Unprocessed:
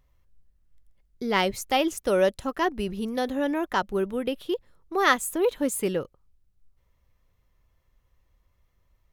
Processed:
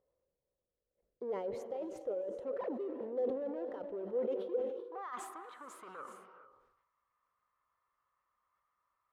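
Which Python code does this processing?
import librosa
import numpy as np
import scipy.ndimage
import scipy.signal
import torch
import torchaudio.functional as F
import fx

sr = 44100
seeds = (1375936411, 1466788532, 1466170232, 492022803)

p1 = fx.sine_speech(x, sr, at=(2.58, 3.01))
p2 = fx.dynamic_eq(p1, sr, hz=3000.0, q=0.77, threshold_db=-43.0, ratio=4.0, max_db=7, at=(3.68, 4.45))
p3 = fx.over_compress(p2, sr, threshold_db=-26.0, ratio=-0.5)
p4 = 10.0 ** (-29.5 / 20.0) * np.tanh(p3 / 10.0 ** (-29.5 / 20.0))
p5 = p4 + fx.echo_wet_lowpass(p4, sr, ms=68, feedback_pct=57, hz=570.0, wet_db=-23.5, dry=0)
p6 = fx.filter_sweep_bandpass(p5, sr, from_hz=500.0, to_hz=1200.0, start_s=4.62, end_s=5.15, q=5.8)
p7 = fx.rev_gated(p6, sr, seeds[0], gate_ms=460, shape='rising', drr_db=9.5)
p8 = fx.sustainer(p7, sr, db_per_s=54.0)
y = p8 * 10.0 ** (2.5 / 20.0)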